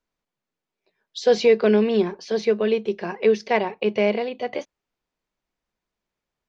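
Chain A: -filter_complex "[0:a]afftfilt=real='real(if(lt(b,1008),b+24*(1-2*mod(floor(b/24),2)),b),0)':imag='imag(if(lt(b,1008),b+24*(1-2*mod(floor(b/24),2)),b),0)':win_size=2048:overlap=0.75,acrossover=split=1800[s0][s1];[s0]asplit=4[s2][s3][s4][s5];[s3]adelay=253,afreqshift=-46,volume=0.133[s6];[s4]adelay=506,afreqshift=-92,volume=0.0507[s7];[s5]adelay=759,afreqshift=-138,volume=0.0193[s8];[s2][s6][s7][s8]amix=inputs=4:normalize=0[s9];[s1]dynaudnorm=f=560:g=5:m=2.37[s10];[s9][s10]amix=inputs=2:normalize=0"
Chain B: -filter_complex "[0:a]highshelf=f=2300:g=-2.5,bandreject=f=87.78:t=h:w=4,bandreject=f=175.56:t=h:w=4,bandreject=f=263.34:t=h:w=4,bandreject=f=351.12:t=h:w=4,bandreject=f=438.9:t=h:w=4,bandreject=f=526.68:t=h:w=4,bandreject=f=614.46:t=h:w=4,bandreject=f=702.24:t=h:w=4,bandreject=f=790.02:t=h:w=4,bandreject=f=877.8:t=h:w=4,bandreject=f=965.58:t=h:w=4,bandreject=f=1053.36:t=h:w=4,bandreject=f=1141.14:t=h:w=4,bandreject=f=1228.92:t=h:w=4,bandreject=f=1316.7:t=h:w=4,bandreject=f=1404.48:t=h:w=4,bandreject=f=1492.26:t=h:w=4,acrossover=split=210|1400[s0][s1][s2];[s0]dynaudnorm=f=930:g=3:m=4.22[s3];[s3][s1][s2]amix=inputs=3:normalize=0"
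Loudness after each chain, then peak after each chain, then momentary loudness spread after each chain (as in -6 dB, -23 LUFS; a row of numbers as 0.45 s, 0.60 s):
-20.0 LUFS, -19.5 LUFS; -5.0 dBFS, -5.0 dBFS; 12 LU, 12 LU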